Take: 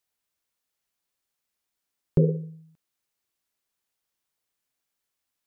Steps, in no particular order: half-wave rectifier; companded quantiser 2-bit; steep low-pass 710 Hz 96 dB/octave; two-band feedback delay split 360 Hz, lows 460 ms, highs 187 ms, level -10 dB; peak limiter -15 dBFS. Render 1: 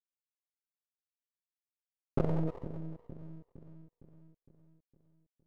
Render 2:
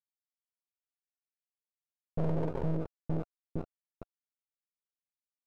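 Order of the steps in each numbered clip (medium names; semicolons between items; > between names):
companded quantiser > steep low-pass > peak limiter > two-band feedback delay > half-wave rectifier; two-band feedback delay > peak limiter > companded quantiser > steep low-pass > half-wave rectifier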